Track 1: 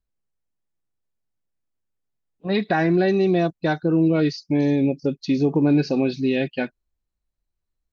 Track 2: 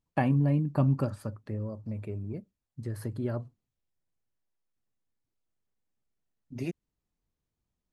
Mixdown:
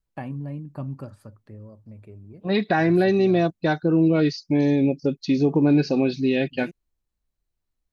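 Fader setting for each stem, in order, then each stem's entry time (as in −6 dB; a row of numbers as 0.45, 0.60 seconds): 0.0, −7.5 decibels; 0.00, 0.00 seconds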